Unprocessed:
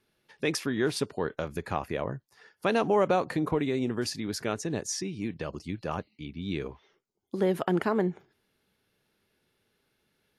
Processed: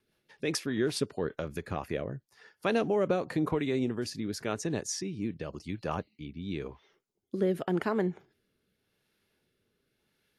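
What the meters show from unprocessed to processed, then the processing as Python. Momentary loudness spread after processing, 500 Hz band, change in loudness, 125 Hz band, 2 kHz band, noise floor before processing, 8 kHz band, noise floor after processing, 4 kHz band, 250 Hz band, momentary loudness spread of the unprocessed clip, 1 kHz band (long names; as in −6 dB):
11 LU, −2.5 dB, −2.5 dB, −1.5 dB, −3.5 dB, −76 dBFS, −2.0 dB, −79 dBFS, −2.5 dB, −1.5 dB, 11 LU, −5.5 dB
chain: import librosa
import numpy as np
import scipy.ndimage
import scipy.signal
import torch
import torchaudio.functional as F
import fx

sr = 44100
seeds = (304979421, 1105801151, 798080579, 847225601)

y = fx.rotary_switch(x, sr, hz=5.0, then_hz=0.9, switch_at_s=1.33)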